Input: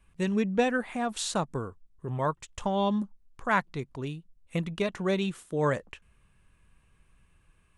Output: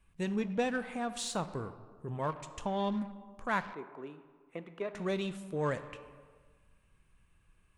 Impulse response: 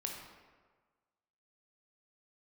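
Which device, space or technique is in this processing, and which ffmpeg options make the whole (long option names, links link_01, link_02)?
saturated reverb return: -filter_complex "[0:a]asplit=2[link_01][link_02];[1:a]atrim=start_sample=2205[link_03];[link_02][link_03]afir=irnorm=-1:irlink=0,asoftclip=type=tanh:threshold=-30dB,volume=-3dB[link_04];[link_01][link_04]amix=inputs=2:normalize=0,asettb=1/sr,asplit=3[link_05][link_06][link_07];[link_05]atrim=end=3.734[link_08];[link_06]atrim=start=3.73:end=4.95,asetpts=PTS-STARTPTS,afade=type=in:duration=0.004:curve=qsin,afade=type=out:start_time=1.216:duration=0.004:curve=qsin,acrossover=split=260 2100:gain=0.0631 1 0.112[link_09][link_10][link_11];[link_09][link_10][link_11]amix=inputs=3:normalize=0[link_12];[link_07]atrim=start=4.946[link_13];[link_08][link_12]acrossfade=duration=0.004:curve1=hsin:curve2=qsin[link_14];[link_14][link_13]acrossfade=duration=0.004:curve1=qsin:curve2=hsin,volume=-8dB"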